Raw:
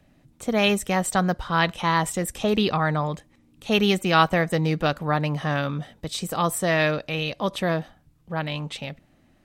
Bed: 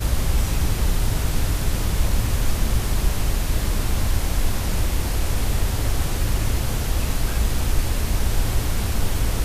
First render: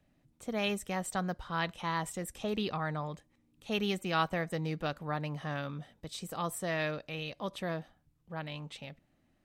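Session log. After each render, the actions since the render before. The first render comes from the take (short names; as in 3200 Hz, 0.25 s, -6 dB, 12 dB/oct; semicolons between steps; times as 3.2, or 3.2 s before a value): gain -12 dB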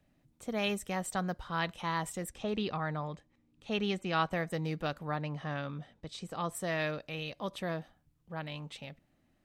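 2.29–4.31 air absorption 66 m; 5.15–6.55 air absorption 66 m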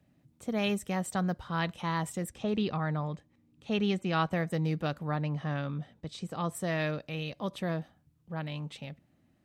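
HPF 91 Hz; low shelf 250 Hz +9 dB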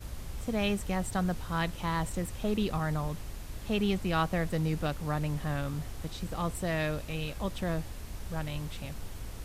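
add bed -19.5 dB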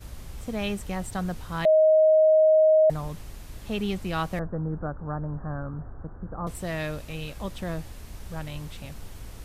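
1.65–2.9 bleep 627 Hz -14.5 dBFS; 4.39–6.47 steep low-pass 1600 Hz 72 dB/oct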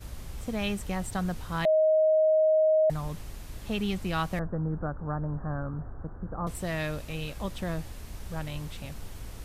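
dynamic EQ 460 Hz, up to -6 dB, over -33 dBFS, Q 0.94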